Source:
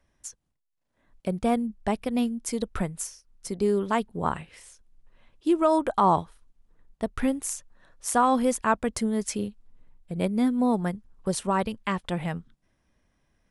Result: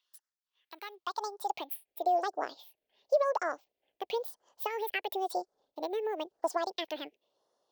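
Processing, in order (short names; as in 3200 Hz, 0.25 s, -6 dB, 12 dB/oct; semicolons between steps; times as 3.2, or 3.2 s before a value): compressor, threshold -23 dBFS, peak gain reduction 7.5 dB; phaser stages 4, 0.55 Hz, lowest notch 660–1400 Hz; high-pass sweep 1000 Hz -> 360 Hz, 0.61–3.34; wide varispeed 1.75×; gain -2.5 dB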